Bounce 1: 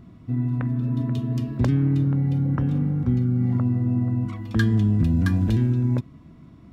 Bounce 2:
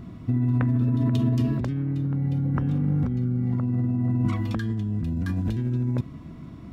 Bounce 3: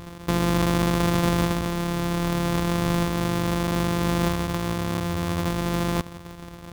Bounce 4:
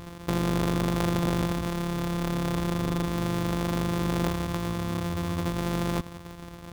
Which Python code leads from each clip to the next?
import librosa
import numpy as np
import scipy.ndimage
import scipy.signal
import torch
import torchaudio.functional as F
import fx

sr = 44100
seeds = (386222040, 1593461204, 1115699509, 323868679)

y1 = fx.over_compress(x, sr, threshold_db=-26.0, ratio=-1.0)
y1 = y1 * librosa.db_to_amplitude(2.0)
y2 = np.r_[np.sort(y1[:len(y1) // 256 * 256].reshape(-1, 256), axis=1).ravel(), y1[len(y1) // 256 * 256:]]
y2 = fx.small_body(y2, sr, hz=(1100.0, 3500.0), ring_ms=45, db=11)
y3 = fx.transformer_sat(y2, sr, knee_hz=260.0)
y3 = y3 * librosa.db_to_amplitude(-2.0)